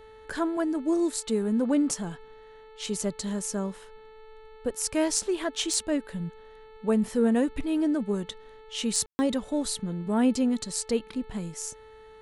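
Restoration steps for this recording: clip repair -12.5 dBFS; de-hum 437.5 Hz, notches 10; room tone fill 9.06–9.19 s

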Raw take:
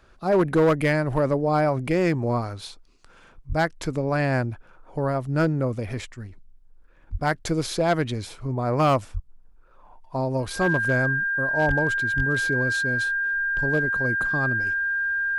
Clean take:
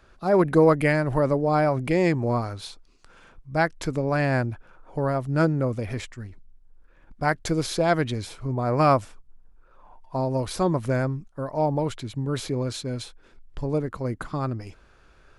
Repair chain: clip repair -14 dBFS; band-stop 1.6 kHz, Q 30; de-plosive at 3.48/7.11/9.13/11.67/12.16 s

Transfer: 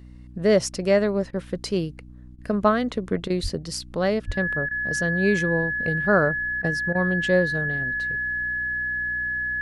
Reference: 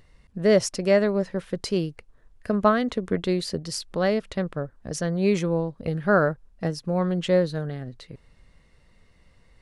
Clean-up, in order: de-hum 61.5 Hz, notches 5; band-stop 1.7 kHz, Q 30; de-plosive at 3.42/4.26 s; interpolate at 1.31/2.36/3.28/4.69/6.62/6.93 s, 19 ms

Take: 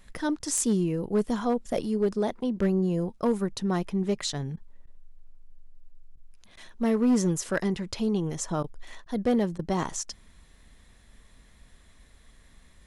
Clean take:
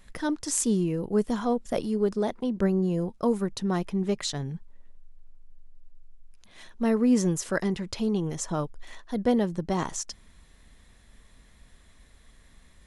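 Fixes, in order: clip repair -17.5 dBFS; interpolate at 0.39/4.56/4.86/6.16/6.56/8.63/9.05/9.58 s, 10 ms

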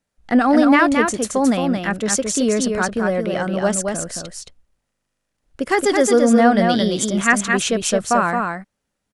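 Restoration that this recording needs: inverse comb 221 ms -4.5 dB

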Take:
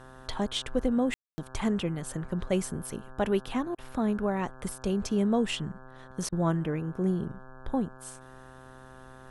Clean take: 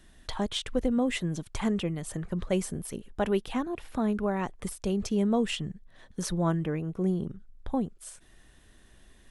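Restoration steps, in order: de-hum 130 Hz, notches 13; room tone fill 1.14–1.38 s; interpolate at 3.75/6.29 s, 32 ms

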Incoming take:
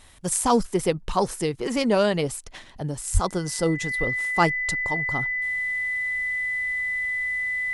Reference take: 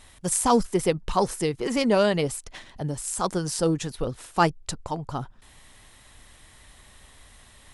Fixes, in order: band-stop 2 kHz, Q 30; de-plosive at 3.13 s

